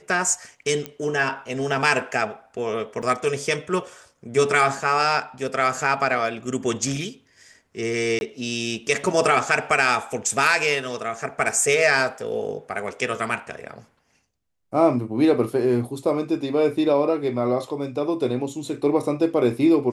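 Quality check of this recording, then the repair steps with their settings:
0.86 s: pop -14 dBFS
3.02–3.03 s: dropout 6.3 ms
8.19–8.21 s: dropout 21 ms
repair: de-click; interpolate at 3.02 s, 6.3 ms; interpolate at 8.19 s, 21 ms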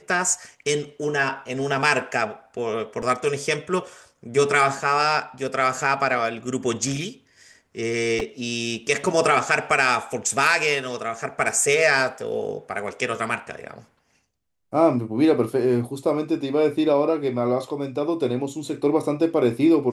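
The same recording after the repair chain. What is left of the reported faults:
nothing left

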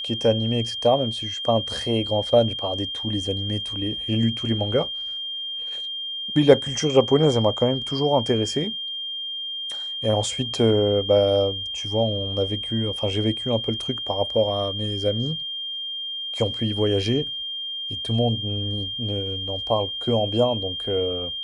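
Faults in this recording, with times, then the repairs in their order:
whine 3.2 kHz -28 dBFS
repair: band-stop 3.2 kHz, Q 30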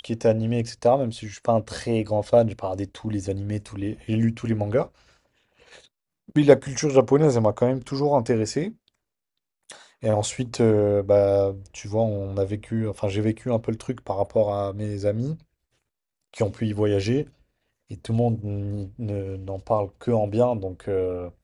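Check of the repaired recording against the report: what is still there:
nothing left

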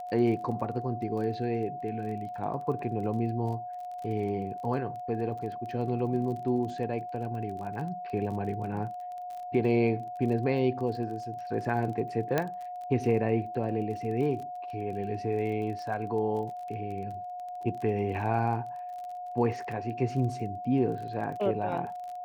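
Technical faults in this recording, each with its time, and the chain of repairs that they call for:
crackle 25 per s -38 dBFS
whine 720 Hz -36 dBFS
12.38 s: pop -13 dBFS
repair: de-click; band-stop 720 Hz, Q 30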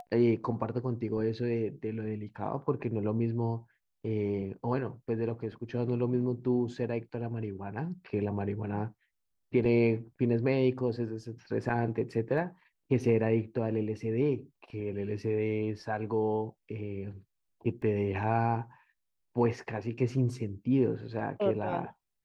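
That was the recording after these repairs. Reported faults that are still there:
12.38 s: pop

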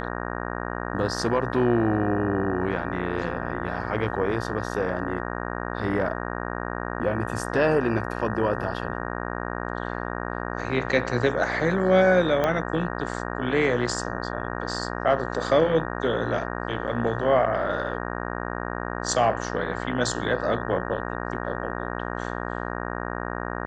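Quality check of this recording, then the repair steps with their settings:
buzz 60 Hz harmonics 31 -31 dBFS
12.44 s: pop -11 dBFS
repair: de-click; de-hum 60 Hz, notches 31

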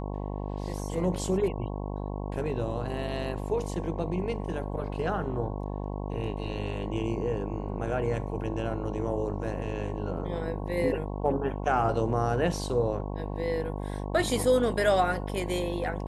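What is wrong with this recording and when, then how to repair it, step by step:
buzz 50 Hz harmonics 22 -34 dBFS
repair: de-hum 50 Hz, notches 22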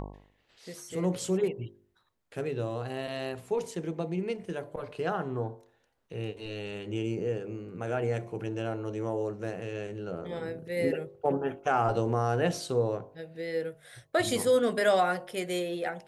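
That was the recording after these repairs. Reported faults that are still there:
nothing left

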